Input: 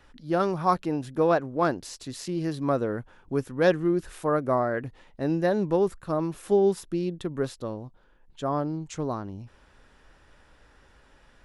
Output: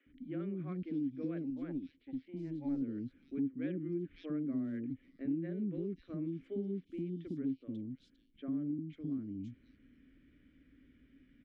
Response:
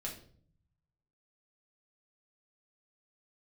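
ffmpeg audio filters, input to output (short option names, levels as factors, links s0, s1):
-filter_complex "[0:a]asettb=1/sr,asplit=3[s0][s1][s2];[s0]atrim=end=8.724[s3];[s1]atrim=start=8.72:end=9.12,asetpts=PTS-STARTPTS,afade=t=in:d=0.004:c=qsin,afade=t=out:st=0.396:d=0.004:c=qsin,acrossover=split=300[s4][s5];[s5]acompressor=threshold=0.00708:ratio=2[s6];[s4][s6]amix=inputs=2:normalize=0[s7];[s2]atrim=start=9.116[s8];[s3][s7]acrossfade=d=0.004:c1=hsin:c2=qsin[s9];[s9][s8]acrossfade=d=0.004:c1=qsin:c2=hsin,asplit=3[s10][s11][s12];[s10]bandpass=f=270:t=q:w=8,volume=1[s13];[s11]bandpass=f=2290:t=q:w=8,volume=0.501[s14];[s12]bandpass=f=3010:t=q:w=8,volume=0.355[s15];[s13][s14][s15]amix=inputs=3:normalize=0,aemphasis=mode=reproduction:type=riaa,asettb=1/sr,asplit=3[s16][s17][s18];[s16]atrim=end=1.444[s19];[s17]atrim=start=1.44:end=2.76,asetpts=PTS-STARTPTS,afade=t=in:d=0.004:c=qsin,afade=t=out:st=1.316:d=0.004:c=qsin,aeval=exprs='0.501*(cos(1*acos(clip(val(0)/0.501,-1,1)))-cos(1*PI/2))+0.0316*(cos(4*acos(clip(val(0)/0.501,-1,1)))-cos(4*PI/2))+0.0316*(cos(7*acos(clip(val(0)/0.501,-1,1)))-cos(7*PI/2))':c=same[s20];[s18]atrim=start=2.756[s21];[s19][s20]acrossfade=d=0.004:c1=hsin:c2=qsin[s22];[s22][s21]acrossfade=d=0.004:c1=qsin:c2=hsin,acrossover=split=420|3300[s23][s24][s25];[s23]adelay=60[s26];[s25]adelay=540[s27];[s26][s24][s27]amix=inputs=3:normalize=0,acompressor=threshold=0.00501:ratio=2,volume=1.78"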